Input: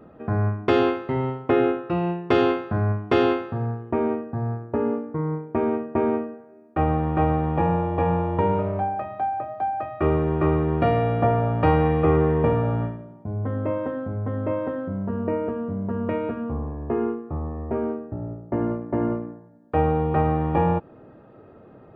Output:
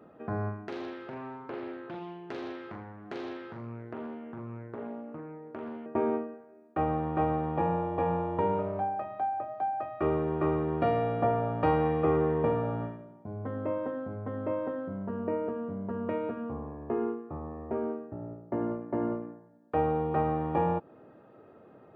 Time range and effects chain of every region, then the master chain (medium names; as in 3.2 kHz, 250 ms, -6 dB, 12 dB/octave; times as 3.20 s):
0.67–5.86 s: compression 3:1, threshold -34 dBFS + flutter echo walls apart 7.3 m, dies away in 0.44 s + loudspeaker Doppler distortion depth 0.56 ms
whole clip: high-pass 230 Hz 6 dB/octave; dynamic bell 2.4 kHz, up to -4 dB, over -42 dBFS, Q 0.93; trim -4.5 dB